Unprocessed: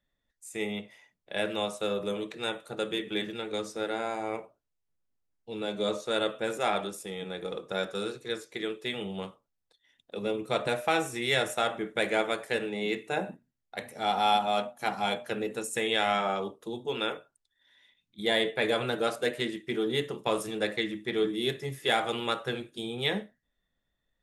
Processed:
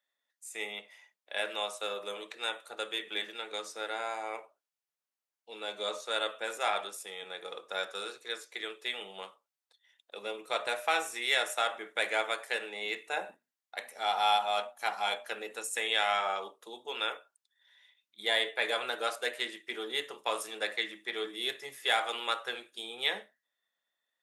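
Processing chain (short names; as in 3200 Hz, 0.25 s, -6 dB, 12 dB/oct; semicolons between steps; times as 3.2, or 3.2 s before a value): HPF 730 Hz 12 dB/oct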